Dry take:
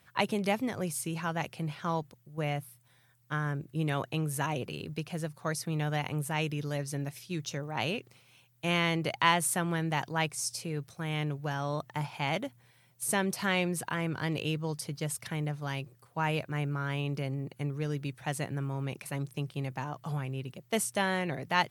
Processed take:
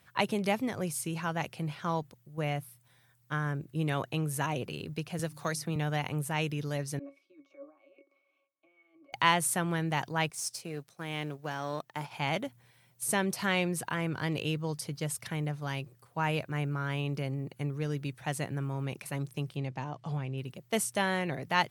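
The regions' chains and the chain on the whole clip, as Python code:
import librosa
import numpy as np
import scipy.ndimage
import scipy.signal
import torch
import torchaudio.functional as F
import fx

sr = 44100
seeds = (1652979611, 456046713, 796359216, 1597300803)

y = fx.chain(x, sr, fx.hum_notches(base_hz=50, count=6),
    fx.band_squash(depth_pct=70), at=(5.19, 5.76))
y = fx.chain(y, sr, fx.ellip_highpass(hz=330.0, order=4, stop_db=60),
    fx.over_compress(threshold_db=-44.0, ratio=-1.0),
    fx.octave_resonator(note='C#', decay_s=0.17), at=(6.99, 9.13))
y = fx.chain(y, sr, fx.law_mismatch(coded='A'),
    fx.highpass(hz=180.0, slope=12), at=(10.3, 12.11))
y = fx.chain(y, sr, fx.lowpass(hz=5700.0, slope=12),
    fx.peak_eq(hz=1400.0, db=-5.5, octaves=0.87), at=(19.56, 20.38))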